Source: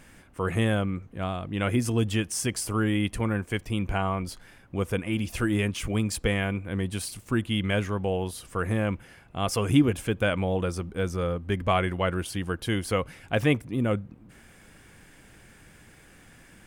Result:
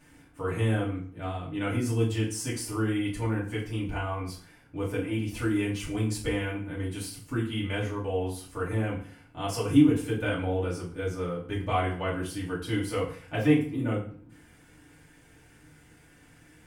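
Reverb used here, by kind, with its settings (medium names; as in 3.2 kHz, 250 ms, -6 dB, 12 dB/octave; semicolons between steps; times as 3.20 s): FDN reverb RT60 0.49 s, low-frequency decay 1.1×, high-frequency decay 0.8×, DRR -7.5 dB; trim -12 dB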